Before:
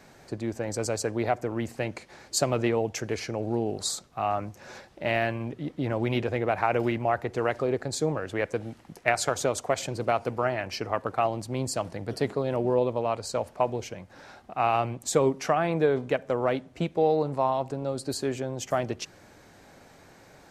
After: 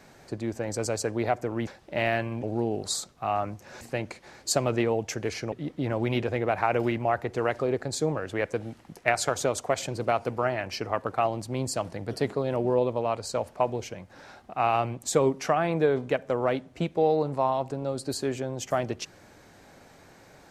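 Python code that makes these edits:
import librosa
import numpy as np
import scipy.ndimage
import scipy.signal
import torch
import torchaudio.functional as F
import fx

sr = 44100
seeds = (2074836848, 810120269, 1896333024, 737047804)

y = fx.edit(x, sr, fx.swap(start_s=1.67, length_s=1.71, other_s=4.76, other_length_s=0.76), tone=tone)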